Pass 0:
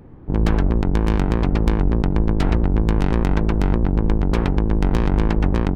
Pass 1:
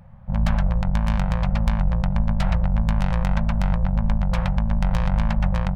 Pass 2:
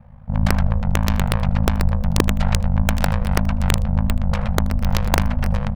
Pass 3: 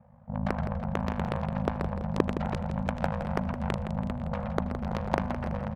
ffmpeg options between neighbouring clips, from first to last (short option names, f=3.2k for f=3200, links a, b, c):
-af "afftfilt=real='re*(1-between(b*sr/4096,220,510))':imag='im*(1-between(b*sr/4096,220,510))':win_size=4096:overlap=0.75,volume=-2dB"
-af "aeval=exprs='(mod(2.82*val(0)+1,2)-1)/2.82':c=same,aecho=1:1:79:0.075,aeval=exprs='val(0)*sin(2*PI*26*n/s)':c=same,volume=4.5dB"
-filter_complex "[0:a]bandpass=f=480:t=q:w=0.64:csg=0,asplit=2[a][b];[b]aecho=0:1:166|332|498|664|830:0.335|0.164|0.0804|0.0394|0.0193[c];[a][c]amix=inputs=2:normalize=0,volume=-4dB"